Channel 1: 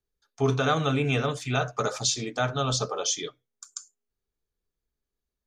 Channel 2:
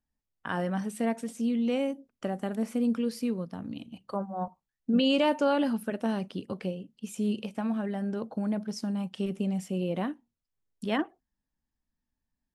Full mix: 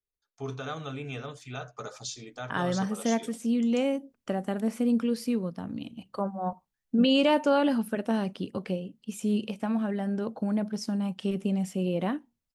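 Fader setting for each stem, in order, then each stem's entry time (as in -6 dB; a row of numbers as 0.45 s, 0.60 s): -12.0 dB, +2.0 dB; 0.00 s, 2.05 s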